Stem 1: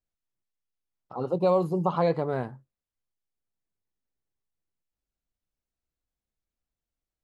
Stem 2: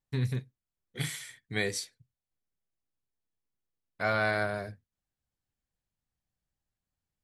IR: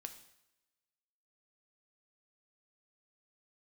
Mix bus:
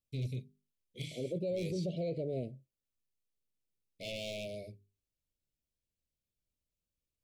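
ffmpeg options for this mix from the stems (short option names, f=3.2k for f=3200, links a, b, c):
-filter_complex "[0:a]volume=-4.5dB[a];[1:a]bandreject=f=50:t=h:w=6,bandreject=f=100:t=h:w=6,bandreject=f=150:t=h:w=6,bandreject=f=200:t=h:w=6,bandreject=f=250:t=h:w=6,bandreject=f=300:t=h:w=6,bandreject=f=350:t=h:w=6,bandreject=f=400:t=h:w=6,acrossover=split=5600[b][c];[c]acompressor=threshold=-58dB:ratio=4:attack=1:release=60[d];[b][d]amix=inputs=2:normalize=0,aeval=exprs='0.0596*(abs(mod(val(0)/0.0596+3,4)-2)-1)':c=same,volume=-6dB[e];[a][e]amix=inputs=2:normalize=0,asuperstop=centerf=1200:order=20:qfactor=0.78,alimiter=level_in=5dB:limit=-24dB:level=0:latency=1:release=11,volume=-5dB"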